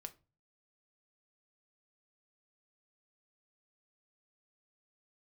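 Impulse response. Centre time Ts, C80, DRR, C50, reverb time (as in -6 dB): 4 ms, 25.5 dB, 7.5 dB, 18.5 dB, 0.30 s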